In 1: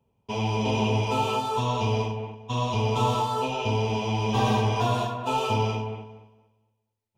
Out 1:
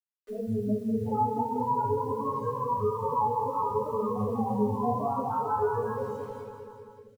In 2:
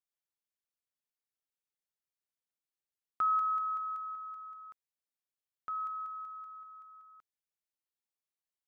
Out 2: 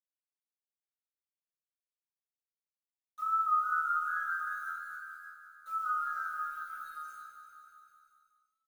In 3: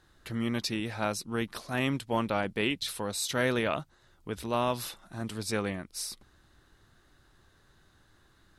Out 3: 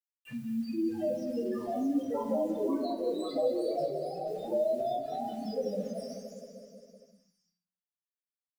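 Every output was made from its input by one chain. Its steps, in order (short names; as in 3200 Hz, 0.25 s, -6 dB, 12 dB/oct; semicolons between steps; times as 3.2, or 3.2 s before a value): HPF 170 Hz 12 dB/oct; loudest bins only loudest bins 1; high shelf 11000 Hz -5 dB; wow and flutter 53 cents; treble ducked by the level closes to 2600 Hz, closed at -37.5 dBFS; bit-crush 11-bit; on a send: feedback echo 0.194 s, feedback 59%, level -10 dB; on the sum: shoebox room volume 45 m³, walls mixed, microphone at 2.5 m; echoes that change speed 0.761 s, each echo +2 st, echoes 2, each echo -6 dB; three-band squash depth 40%; gain -5.5 dB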